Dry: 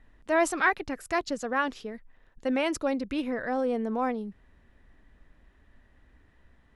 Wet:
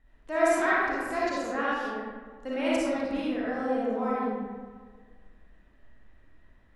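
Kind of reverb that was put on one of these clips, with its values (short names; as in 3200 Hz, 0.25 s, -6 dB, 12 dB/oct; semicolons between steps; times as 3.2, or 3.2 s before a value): digital reverb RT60 1.6 s, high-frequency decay 0.5×, pre-delay 15 ms, DRR -8 dB; gain -8.5 dB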